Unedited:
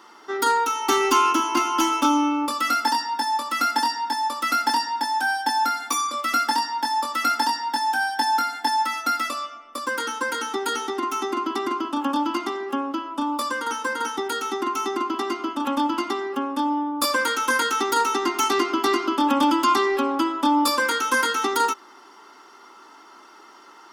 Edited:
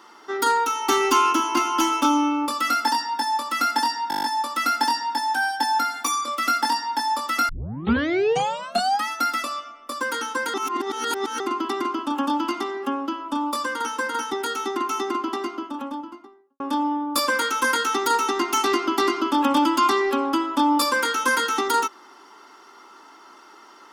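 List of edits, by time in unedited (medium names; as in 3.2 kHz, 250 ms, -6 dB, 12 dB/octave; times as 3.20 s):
4.09 s: stutter 0.02 s, 8 plays
7.35 s: tape start 1.59 s
10.40–11.26 s: reverse
14.90–16.46 s: studio fade out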